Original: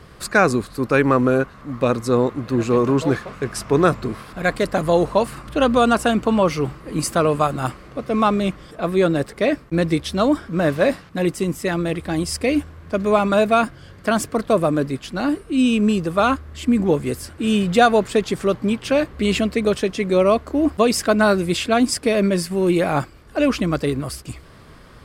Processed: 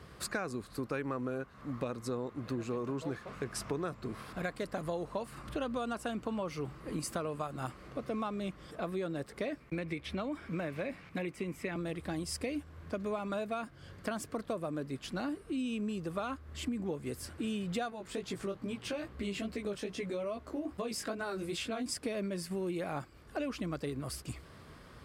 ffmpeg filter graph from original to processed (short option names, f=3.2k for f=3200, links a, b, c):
-filter_complex "[0:a]asettb=1/sr,asplit=3[a][b][c];[a]atrim=end=9.604[d];[b]atrim=start=9.6:end=11.76,asetpts=PTS-STARTPTS,afade=t=in:d=0.004:c=qsin,afade=t=out:st=2.156:d=0.004:c=qsin,equalizer=f=2.3k:w=3.8:g=11.5,acrossover=split=320|3300[e][f][g];[e]acompressor=threshold=-23dB:ratio=4[h];[f]acompressor=threshold=-20dB:ratio=4[i];[g]acompressor=threshold=-45dB:ratio=4[j];[h][i][j]amix=inputs=3:normalize=0[k];[c]atrim=start=11.756[l];[d][k]acrossfade=d=0.004:c1=hsin:c2=qsin[m];[m][l]acrossfade=d=0.004:c1=qsin:c2=hsin,asettb=1/sr,asplit=3[n][o][p];[n]atrim=end=17.904[q];[o]atrim=start=17.9:end=21.86,asetpts=PTS-STARTPTS,afade=t=in:d=0.004:c=qsin,afade=t=out:st=3.956:d=0.004:c=qsin,acompressor=threshold=-19dB:ratio=2:attack=3.2:release=140:knee=1:detection=peak,flanger=delay=16:depth=4.3:speed=2.4[r];[p]atrim=start=21.856[s];[q][r]acrossfade=d=0.004:c1=hsin:c2=qsin[t];[t][s]acrossfade=d=0.004:c1=qsin:c2=hsin,highpass=43,acompressor=threshold=-26dB:ratio=6,volume=-8dB"